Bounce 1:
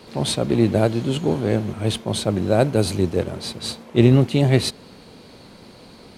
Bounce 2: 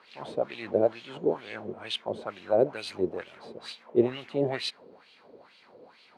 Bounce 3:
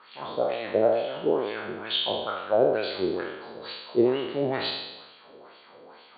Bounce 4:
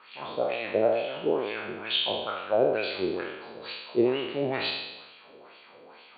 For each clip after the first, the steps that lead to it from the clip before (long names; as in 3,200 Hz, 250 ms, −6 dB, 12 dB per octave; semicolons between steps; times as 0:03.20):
LFO wah 2.2 Hz 420–3,000 Hz, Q 2.7
peak hold with a decay on every bin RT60 1.00 s; Chebyshev low-pass with heavy ripple 4,600 Hz, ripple 6 dB; level +4 dB
parametric band 2,500 Hz +9.5 dB 0.38 octaves; level −2 dB